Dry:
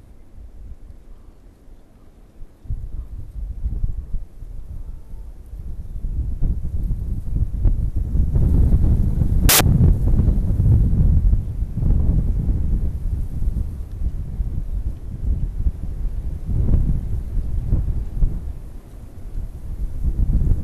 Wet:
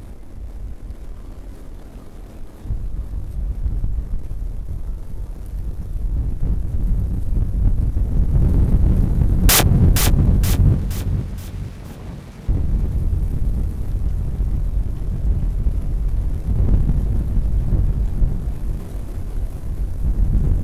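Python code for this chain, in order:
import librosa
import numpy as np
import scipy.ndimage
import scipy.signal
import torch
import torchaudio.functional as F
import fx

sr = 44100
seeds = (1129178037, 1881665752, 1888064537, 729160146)

y = fx.bandpass_q(x, sr, hz=3200.0, q=0.66, at=(10.74, 12.49))
y = fx.power_curve(y, sr, exponent=0.7)
y = fx.doubler(y, sr, ms=22.0, db=-10)
y = fx.echo_feedback(y, sr, ms=472, feedback_pct=41, wet_db=-7)
y = F.gain(torch.from_numpy(y), -2.5).numpy()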